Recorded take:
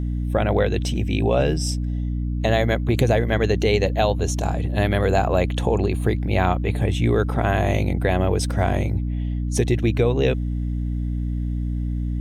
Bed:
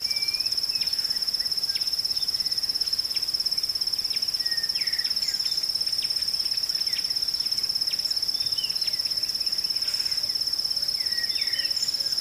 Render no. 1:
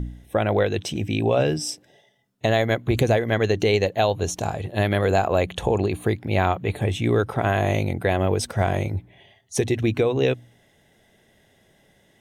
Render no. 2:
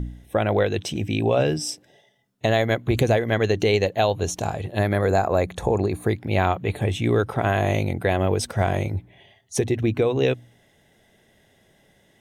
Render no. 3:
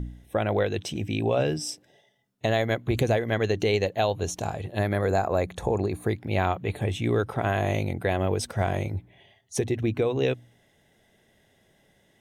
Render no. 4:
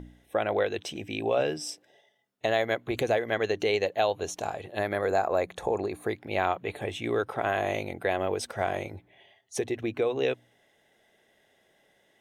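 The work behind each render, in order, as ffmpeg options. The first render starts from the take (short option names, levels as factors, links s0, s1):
-af "bandreject=f=60:t=h:w=4,bandreject=f=120:t=h:w=4,bandreject=f=180:t=h:w=4,bandreject=f=240:t=h:w=4,bandreject=f=300:t=h:w=4"
-filter_complex "[0:a]asettb=1/sr,asplit=3[s0][s1][s2];[s0]atrim=end=4.794[s3];[s1]atrim=start=4.79:end=6.1,asetpts=PTS-STARTPTS,afade=t=in:d=0.004:c=qsin,afade=t=out:st=1.306:d=0.004:c=qsin,equalizer=f=3000:t=o:w=0.4:g=-14.5[s4];[s2]atrim=start=6.096[s5];[s3][s4]acrossfade=d=0.004:c1=hsin:c2=qsin[s6];[s6][s5]acrossfade=d=0.004:c1=qsin:c2=hsin,asettb=1/sr,asplit=3[s7][s8][s9];[s7]atrim=end=9.594[s10];[s8]atrim=start=9.59:end=10.02,asetpts=PTS-STARTPTS,afade=t=in:d=0.004:c=qsin,afade=t=out:st=0.426:d=0.004:c=qsin,equalizer=f=6400:w=0.34:g=-6[s11];[s9]atrim=start=10.016[s12];[s10][s11]acrossfade=d=0.004:c1=hsin:c2=qsin[s13];[s13][s12]acrossfade=d=0.004:c1=qsin:c2=hsin"
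-af "volume=0.631"
-af "bass=f=250:g=-14,treble=f=4000:g=-4,bandreject=f=970:w=26"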